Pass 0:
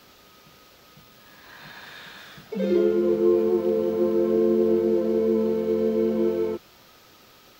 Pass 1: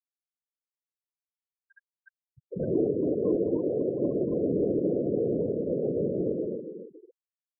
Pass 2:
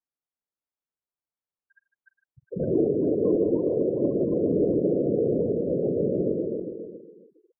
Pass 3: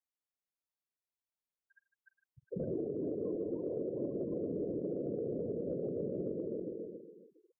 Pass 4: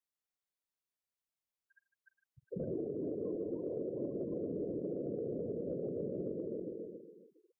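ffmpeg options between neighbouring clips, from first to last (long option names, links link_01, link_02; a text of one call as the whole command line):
ffmpeg -i in.wav -filter_complex "[0:a]afftfilt=real='hypot(re,im)*cos(2*PI*random(0))':imag='hypot(re,im)*sin(2*PI*random(1))':win_size=512:overlap=0.75,asplit=2[link_01][link_02];[link_02]adelay=279,lowpass=frequency=4600:poles=1,volume=-8.5dB,asplit=2[link_03][link_04];[link_04]adelay=279,lowpass=frequency=4600:poles=1,volume=0.41,asplit=2[link_05][link_06];[link_06]adelay=279,lowpass=frequency=4600:poles=1,volume=0.41,asplit=2[link_07][link_08];[link_08]adelay=279,lowpass=frequency=4600:poles=1,volume=0.41,asplit=2[link_09][link_10];[link_10]adelay=279,lowpass=frequency=4600:poles=1,volume=0.41[link_11];[link_01][link_03][link_05][link_07][link_09][link_11]amix=inputs=6:normalize=0,afftfilt=real='re*gte(hypot(re,im),0.0316)':imag='im*gte(hypot(re,im),0.0316)':win_size=1024:overlap=0.75" out.wav
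ffmpeg -i in.wav -filter_complex "[0:a]lowpass=1300,asplit=2[link_01][link_02];[link_02]aecho=0:1:49|153|409:0.112|0.2|0.224[link_03];[link_01][link_03]amix=inputs=2:normalize=0,volume=3dB" out.wav
ffmpeg -i in.wav -af "acompressor=threshold=-28dB:ratio=6,volume=-6dB" out.wav
ffmpeg -i in.wav -af "bandreject=frequency=870:width=22,volume=-1.5dB" out.wav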